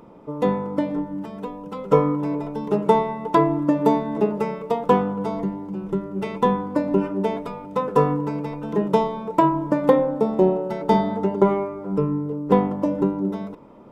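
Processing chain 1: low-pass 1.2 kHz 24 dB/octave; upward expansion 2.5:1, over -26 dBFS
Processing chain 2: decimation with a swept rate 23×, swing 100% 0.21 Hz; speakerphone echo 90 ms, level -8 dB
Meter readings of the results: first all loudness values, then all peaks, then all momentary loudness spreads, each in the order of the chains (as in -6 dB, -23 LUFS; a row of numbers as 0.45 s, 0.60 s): -28.5 LUFS, -21.5 LUFS; -4.5 dBFS, -3.5 dBFS; 21 LU, 9 LU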